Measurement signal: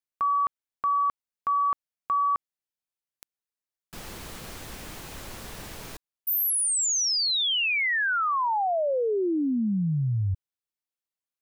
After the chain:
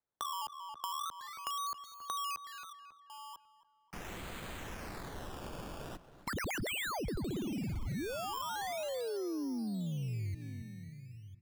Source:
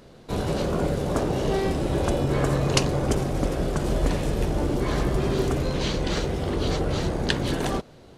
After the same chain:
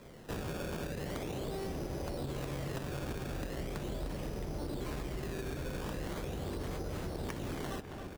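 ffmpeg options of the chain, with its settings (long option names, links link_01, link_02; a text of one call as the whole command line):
ffmpeg -i in.wav -filter_complex "[0:a]asplit=2[link_01][link_02];[link_02]aecho=0:1:1000:0.0841[link_03];[link_01][link_03]amix=inputs=2:normalize=0,acrusher=samples=15:mix=1:aa=0.000001:lfo=1:lforange=15:lforate=0.4,acrossover=split=240[link_04][link_05];[link_05]acompressor=threshold=-26dB:ratio=6:attack=44:release=65:knee=2.83:detection=peak[link_06];[link_04][link_06]amix=inputs=2:normalize=0,asplit=2[link_07][link_08];[link_08]adelay=273,lowpass=frequency=3000:poles=1,volume=-15.5dB,asplit=2[link_09][link_10];[link_10]adelay=273,lowpass=frequency=3000:poles=1,volume=0.48,asplit=2[link_11][link_12];[link_12]adelay=273,lowpass=frequency=3000:poles=1,volume=0.48,asplit=2[link_13][link_14];[link_14]adelay=273,lowpass=frequency=3000:poles=1,volume=0.48[link_15];[link_09][link_11][link_13][link_15]amix=inputs=4:normalize=0[link_16];[link_07][link_16]amix=inputs=2:normalize=0,acompressor=threshold=-31dB:ratio=10:attack=7.8:release=148:knee=6:detection=rms,volume=-3.5dB" out.wav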